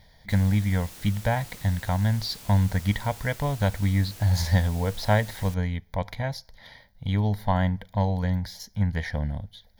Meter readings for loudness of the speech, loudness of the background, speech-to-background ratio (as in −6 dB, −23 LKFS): −26.5 LKFS, −43.5 LKFS, 17.0 dB